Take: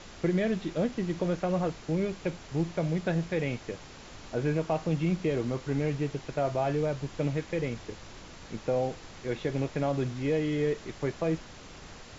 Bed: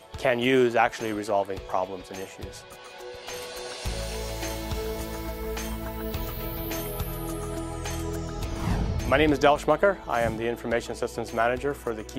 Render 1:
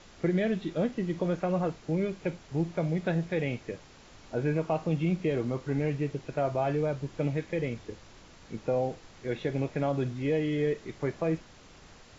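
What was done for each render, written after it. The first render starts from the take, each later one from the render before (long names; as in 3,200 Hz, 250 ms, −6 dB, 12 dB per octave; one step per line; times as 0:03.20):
noise reduction from a noise print 6 dB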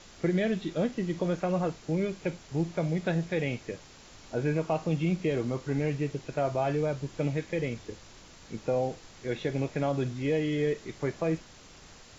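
high-shelf EQ 4,700 Hz +8.5 dB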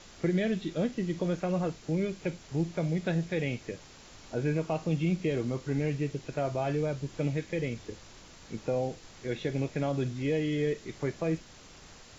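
dynamic equaliser 920 Hz, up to −4 dB, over −42 dBFS, Q 0.74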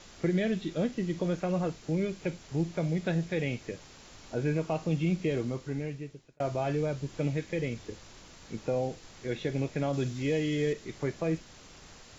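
0:05.36–0:06.40: fade out
0:09.93–0:10.73: high-shelf EQ 4,200 Hz +7 dB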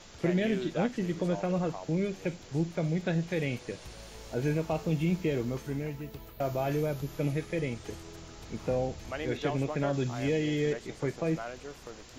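mix in bed −16 dB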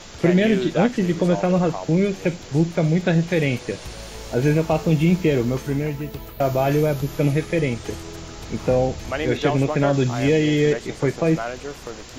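level +11 dB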